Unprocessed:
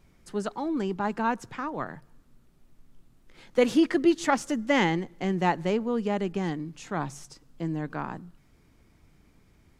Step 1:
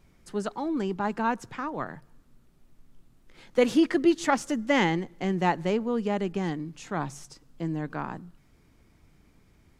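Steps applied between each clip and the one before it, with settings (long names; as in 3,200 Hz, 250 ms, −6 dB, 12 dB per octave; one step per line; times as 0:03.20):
no processing that can be heard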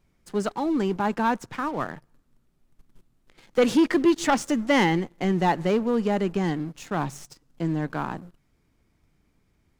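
leveller curve on the samples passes 2
level −3 dB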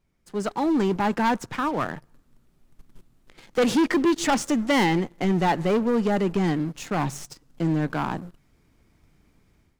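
automatic gain control gain up to 11.5 dB
soft clipping −10.5 dBFS, distortion −13 dB
level −5.5 dB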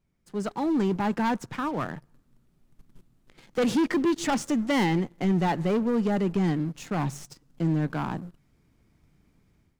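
parametric band 150 Hz +5 dB 1.8 octaves
level −5 dB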